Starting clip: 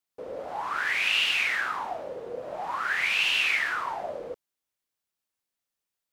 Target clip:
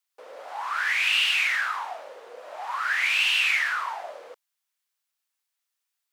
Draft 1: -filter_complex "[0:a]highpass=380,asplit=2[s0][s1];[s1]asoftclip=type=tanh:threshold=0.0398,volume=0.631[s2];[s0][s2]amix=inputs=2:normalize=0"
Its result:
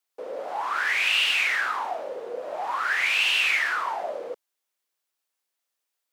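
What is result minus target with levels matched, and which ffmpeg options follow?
500 Hz band +9.5 dB
-filter_complex "[0:a]highpass=1000,asplit=2[s0][s1];[s1]asoftclip=type=tanh:threshold=0.0398,volume=0.631[s2];[s0][s2]amix=inputs=2:normalize=0"

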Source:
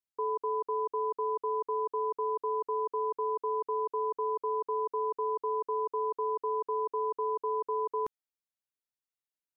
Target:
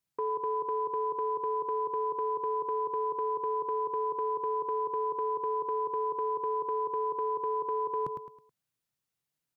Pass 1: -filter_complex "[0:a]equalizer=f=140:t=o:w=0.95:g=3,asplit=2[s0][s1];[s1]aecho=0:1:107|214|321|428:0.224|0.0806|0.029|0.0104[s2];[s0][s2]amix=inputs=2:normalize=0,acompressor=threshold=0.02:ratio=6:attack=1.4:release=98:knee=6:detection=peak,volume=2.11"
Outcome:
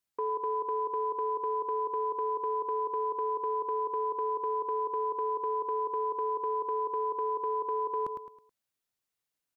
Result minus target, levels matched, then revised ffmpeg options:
125 Hz band -8.5 dB
-filter_complex "[0:a]equalizer=f=140:t=o:w=0.95:g=14.5,asplit=2[s0][s1];[s1]aecho=0:1:107|214|321|428:0.224|0.0806|0.029|0.0104[s2];[s0][s2]amix=inputs=2:normalize=0,acompressor=threshold=0.02:ratio=6:attack=1.4:release=98:knee=6:detection=peak,volume=2.11"

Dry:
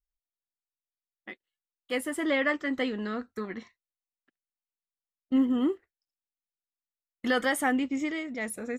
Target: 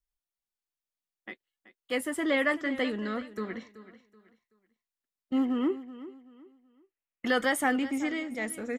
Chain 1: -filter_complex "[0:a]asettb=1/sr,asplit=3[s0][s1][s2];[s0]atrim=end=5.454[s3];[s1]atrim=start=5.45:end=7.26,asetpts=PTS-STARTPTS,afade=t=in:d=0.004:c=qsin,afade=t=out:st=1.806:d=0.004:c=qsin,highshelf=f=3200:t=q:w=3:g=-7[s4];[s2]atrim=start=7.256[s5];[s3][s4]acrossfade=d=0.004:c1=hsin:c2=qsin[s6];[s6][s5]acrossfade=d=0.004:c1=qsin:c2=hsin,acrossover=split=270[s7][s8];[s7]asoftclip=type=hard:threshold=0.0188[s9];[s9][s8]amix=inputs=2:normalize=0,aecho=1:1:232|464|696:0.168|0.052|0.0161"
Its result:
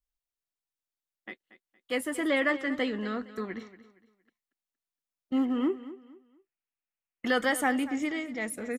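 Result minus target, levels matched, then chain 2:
echo 147 ms early
-filter_complex "[0:a]asettb=1/sr,asplit=3[s0][s1][s2];[s0]atrim=end=5.454[s3];[s1]atrim=start=5.45:end=7.26,asetpts=PTS-STARTPTS,afade=t=in:d=0.004:c=qsin,afade=t=out:st=1.806:d=0.004:c=qsin,highshelf=f=3200:t=q:w=3:g=-7[s4];[s2]atrim=start=7.256[s5];[s3][s4]acrossfade=d=0.004:c1=hsin:c2=qsin[s6];[s6][s5]acrossfade=d=0.004:c1=qsin:c2=hsin,acrossover=split=270[s7][s8];[s7]asoftclip=type=hard:threshold=0.0188[s9];[s9][s8]amix=inputs=2:normalize=0,aecho=1:1:379|758|1137:0.168|0.052|0.0161"

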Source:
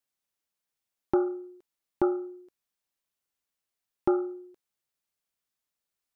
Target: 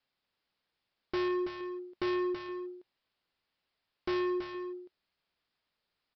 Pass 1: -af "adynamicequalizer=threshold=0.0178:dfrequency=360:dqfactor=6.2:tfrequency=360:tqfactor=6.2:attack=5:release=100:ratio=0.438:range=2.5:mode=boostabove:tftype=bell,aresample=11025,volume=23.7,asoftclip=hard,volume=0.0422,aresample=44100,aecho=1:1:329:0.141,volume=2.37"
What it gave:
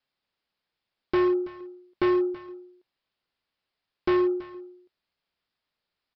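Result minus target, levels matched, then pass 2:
echo-to-direct -9.5 dB; overload inside the chain: distortion -4 dB
-af "adynamicequalizer=threshold=0.0178:dfrequency=360:dqfactor=6.2:tfrequency=360:tqfactor=6.2:attack=5:release=100:ratio=0.438:range=2.5:mode=boostabove:tftype=bell,aresample=11025,volume=75,asoftclip=hard,volume=0.0133,aresample=44100,aecho=1:1:329:0.422,volume=2.37"

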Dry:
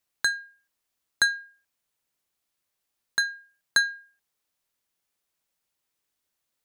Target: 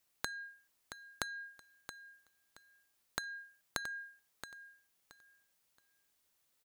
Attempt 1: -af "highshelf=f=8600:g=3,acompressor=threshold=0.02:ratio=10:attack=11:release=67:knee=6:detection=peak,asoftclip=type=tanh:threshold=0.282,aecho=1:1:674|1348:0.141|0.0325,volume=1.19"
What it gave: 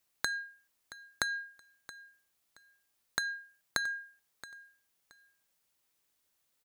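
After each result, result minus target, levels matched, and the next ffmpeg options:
compression: peak gain reduction -9.5 dB; echo-to-direct -6.5 dB
-af "highshelf=f=8600:g=3,acompressor=threshold=0.00596:ratio=10:attack=11:release=67:knee=6:detection=peak,asoftclip=type=tanh:threshold=0.282,aecho=1:1:674|1348:0.141|0.0325,volume=1.19"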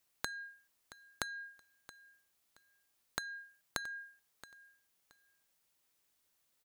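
echo-to-direct -6.5 dB
-af "highshelf=f=8600:g=3,acompressor=threshold=0.00596:ratio=10:attack=11:release=67:knee=6:detection=peak,asoftclip=type=tanh:threshold=0.282,aecho=1:1:674|1348|2022:0.299|0.0687|0.0158,volume=1.19"

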